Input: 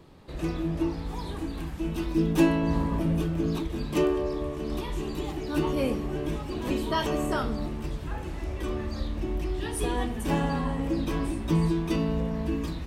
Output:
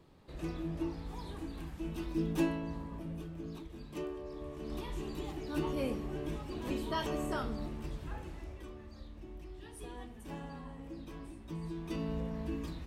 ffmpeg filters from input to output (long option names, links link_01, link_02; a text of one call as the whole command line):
ffmpeg -i in.wav -af "volume=8dB,afade=type=out:start_time=2.34:duration=0.43:silence=0.446684,afade=type=in:start_time=4.23:duration=0.61:silence=0.398107,afade=type=out:start_time=8.1:duration=0.63:silence=0.316228,afade=type=in:start_time=11.61:duration=0.52:silence=0.354813" out.wav